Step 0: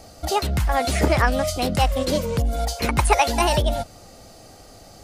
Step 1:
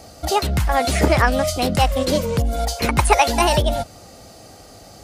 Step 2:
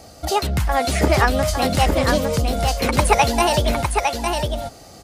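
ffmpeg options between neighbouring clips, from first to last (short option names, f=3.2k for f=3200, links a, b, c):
-af "highpass=47,volume=3dB"
-af "aecho=1:1:857:0.596,volume=-1dB"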